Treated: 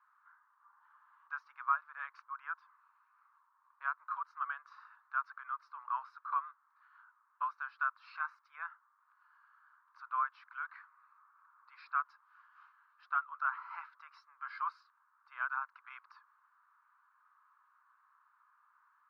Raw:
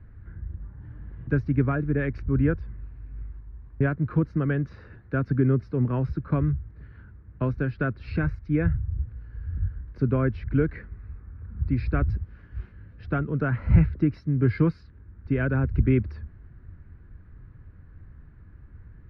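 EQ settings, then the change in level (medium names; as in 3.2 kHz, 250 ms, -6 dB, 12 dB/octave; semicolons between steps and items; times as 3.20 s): steep high-pass 1 kHz 48 dB/octave; resonant high shelf 1.5 kHz -8.5 dB, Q 3; +1.0 dB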